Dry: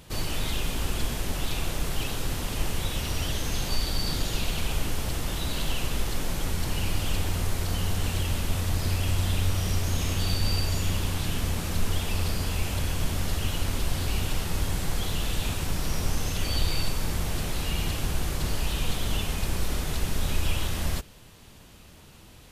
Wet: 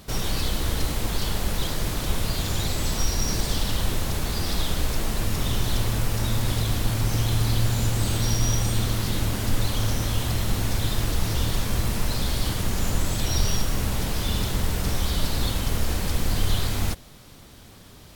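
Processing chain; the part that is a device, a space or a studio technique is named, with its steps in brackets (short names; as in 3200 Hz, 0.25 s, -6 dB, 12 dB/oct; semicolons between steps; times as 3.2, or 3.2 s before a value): nightcore (varispeed +24%); gain +3 dB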